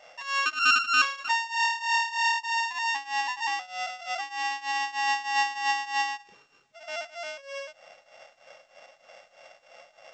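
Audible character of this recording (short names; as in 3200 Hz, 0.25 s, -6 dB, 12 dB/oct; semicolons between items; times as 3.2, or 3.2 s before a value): a buzz of ramps at a fixed pitch in blocks of 16 samples; tremolo triangle 3.2 Hz, depth 90%; A-law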